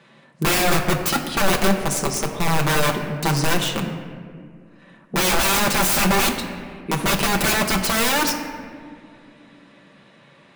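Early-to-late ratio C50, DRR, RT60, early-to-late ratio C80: 7.0 dB, 1.0 dB, 2.1 s, 8.0 dB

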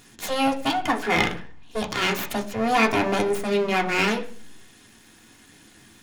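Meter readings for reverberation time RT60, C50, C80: 0.45 s, 14.5 dB, 18.5 dB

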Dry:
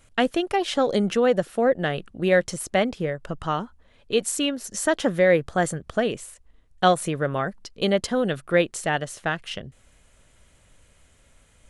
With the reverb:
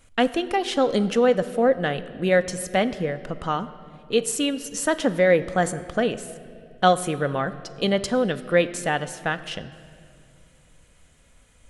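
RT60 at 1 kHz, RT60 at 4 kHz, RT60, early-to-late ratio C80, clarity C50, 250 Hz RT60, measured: 2.1 s, 1.8 s, 2.4 s, 15.5 dB, 14.5 dB, 3.2 s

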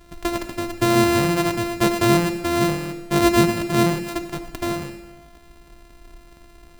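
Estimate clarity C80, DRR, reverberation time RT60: 12.0 dB, 8.0 dB, 1.3 s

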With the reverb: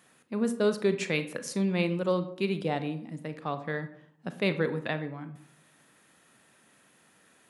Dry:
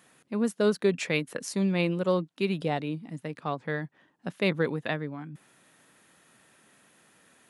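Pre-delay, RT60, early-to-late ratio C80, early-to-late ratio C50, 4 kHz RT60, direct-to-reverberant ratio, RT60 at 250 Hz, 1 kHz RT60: 31 ms, 0.65 s, 16.0 dB, 12.5 dB, 0.35 s, 10.0 dB, 0.85 s, 0.60 s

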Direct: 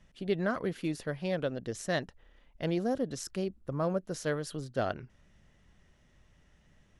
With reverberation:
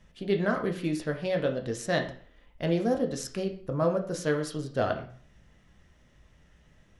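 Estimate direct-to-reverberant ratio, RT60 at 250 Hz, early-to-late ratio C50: 3.5 dB, 0.45 s, 10.5 dB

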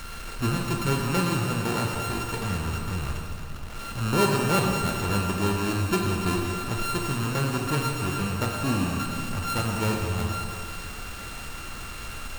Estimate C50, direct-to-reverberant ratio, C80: 1.0 dB, -0.5 dB, 2.0 dB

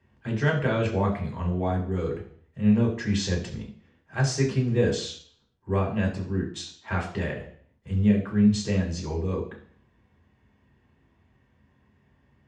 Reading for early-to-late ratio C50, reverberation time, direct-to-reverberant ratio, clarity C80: 8.5 dB, 0.55 s, -3.0 dB, 12.0 dB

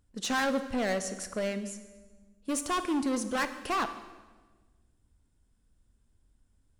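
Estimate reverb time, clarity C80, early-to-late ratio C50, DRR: 1.3 s, 13.0 dB, 11.5 dB, 10.0 dB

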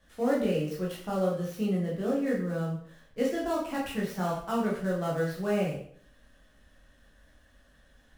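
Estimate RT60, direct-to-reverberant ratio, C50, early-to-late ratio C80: 0.55 s, -5.0 dB, 4.0 dB, 8.5 dB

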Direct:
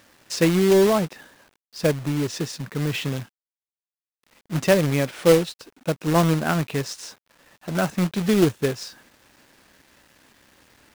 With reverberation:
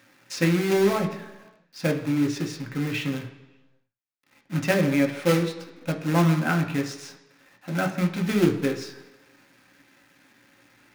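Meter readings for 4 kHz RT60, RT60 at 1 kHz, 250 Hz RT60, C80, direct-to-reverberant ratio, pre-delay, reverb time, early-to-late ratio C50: 1.2 s, 1.2 s, 1.0 s, 12.5 dB, 2.5 dB, 3 ms, 1.2 s, 10.5 dB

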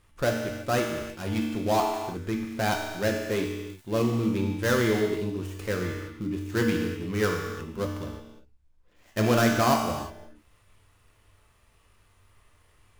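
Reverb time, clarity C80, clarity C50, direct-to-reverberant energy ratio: no single decay rate, 4.5 dB, 3.0 dB, 0.0 dB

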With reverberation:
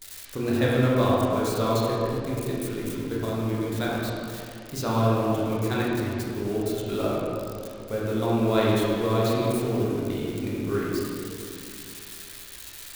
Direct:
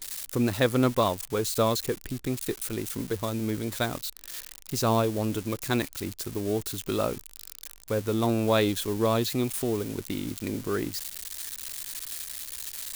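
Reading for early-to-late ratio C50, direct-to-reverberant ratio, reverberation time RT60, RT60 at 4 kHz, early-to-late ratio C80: -3.0 dB, -6.5 dB, 2.6 s, 1.6 s, -1.5 dB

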